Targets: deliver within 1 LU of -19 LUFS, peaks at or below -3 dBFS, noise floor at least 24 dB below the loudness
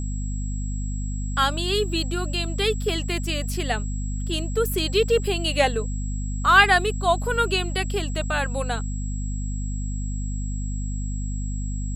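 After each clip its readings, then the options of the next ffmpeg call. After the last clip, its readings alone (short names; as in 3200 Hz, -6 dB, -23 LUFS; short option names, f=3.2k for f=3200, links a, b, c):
hum 50 Hz; harmonics up to 250 Hz; hum level -25 dBFS; steady tone 7700 Hz; tone level -40 dBFS; loudness -24.5 LUFS; peak -2.0 dBFS; loudness target -19.0 LUFS
-> -af "bandreject=f=50:t=h:w=4,bandreject=f=100:t=h:w=4,bandreject=f=150:t=h:w=4,bandreject=f=200:t=h:w=4,bandreject=f=250:t=h:w=4"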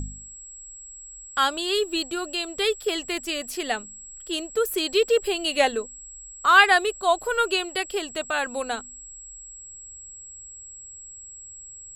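hum none; steady tone 7700 Hz; tone level -40 dBFS
-> -af "bandreject=f=7.7k:w=30"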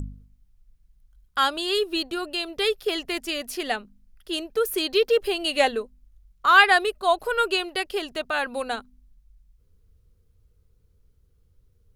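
steady tone none; loudness -23.5 LUFS; peak -2.5 dBFS; loudness target -19.0 LUFS
-> -af "volume=4.5dB,alimiter=limit=-3dB:level=0:latency=1"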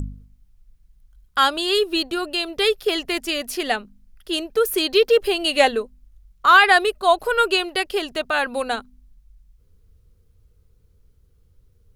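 loudness -19.5 LUFS; peak -3.0 dBFS; noise floor -59 dBFS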